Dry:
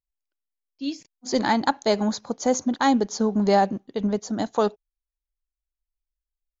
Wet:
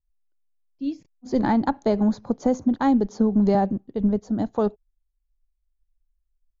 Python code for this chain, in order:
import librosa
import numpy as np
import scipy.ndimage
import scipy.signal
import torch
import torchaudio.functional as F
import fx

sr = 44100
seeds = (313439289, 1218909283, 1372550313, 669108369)

y = fx.tilt_eq(x, sr, slope=-4.0)
y = fx.band_squash(y, sr, depth_pct=70, at=(1.43, 3.55))
y = y * 10.0 ** (-5.5 / 20.0)